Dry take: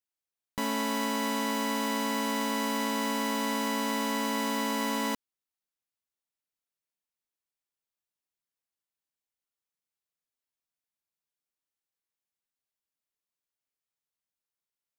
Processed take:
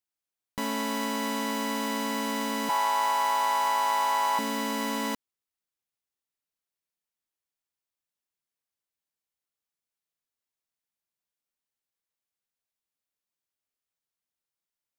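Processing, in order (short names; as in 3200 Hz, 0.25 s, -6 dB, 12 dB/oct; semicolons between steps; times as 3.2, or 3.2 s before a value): 2.69–4.39 resonant high-pass 830 Hz, resonance Q 4.5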